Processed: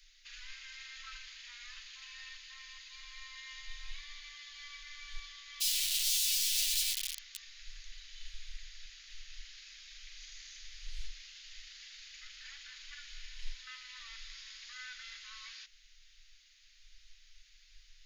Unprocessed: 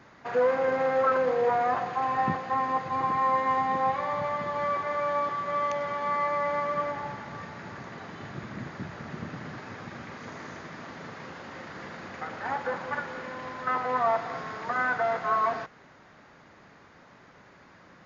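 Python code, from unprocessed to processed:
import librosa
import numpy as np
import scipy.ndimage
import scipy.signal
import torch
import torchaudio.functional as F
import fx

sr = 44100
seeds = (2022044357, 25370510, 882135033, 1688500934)

y = fx.dmg_wind(x, sr, seeds[0], corner_hz=220.0, level_db=-43.0)
y = fx.overflow_wrap(y, sr, gain_db=29.0, at=(5.6, 7.55), fade=0.02)
y = scipy.signal.sosfilt(scipy.signal.cheby2(4, 80, [120.0, 640.0], 'bandstop', fs=sr, output='sos'), y)
y = y * librosa.db_to_amplitude(5.0)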